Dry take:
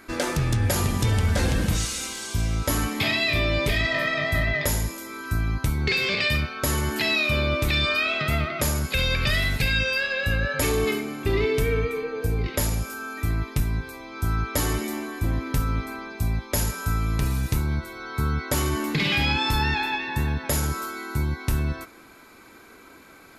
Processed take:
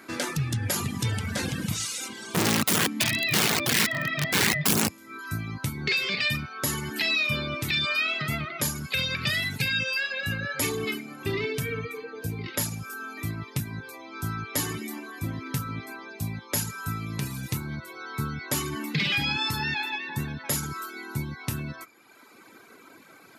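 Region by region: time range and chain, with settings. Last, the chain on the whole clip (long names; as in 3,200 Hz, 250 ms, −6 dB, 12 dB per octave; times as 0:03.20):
0:02.08–0:05.19: bass and treble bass +10 dB, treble −5 dB + wrap-around overflow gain 14.5 dB
whole clip: reverb reduction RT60 1 s; high-pass filter 110 Hz 24 dB per octave; dynamic equaliser 580 Hz, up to −7 dB, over −42 dBFS, Q 0.8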